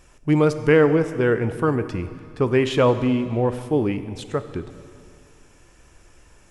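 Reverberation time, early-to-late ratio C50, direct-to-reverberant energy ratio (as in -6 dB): 2.2 s, 12.0 dB, 11.0 dB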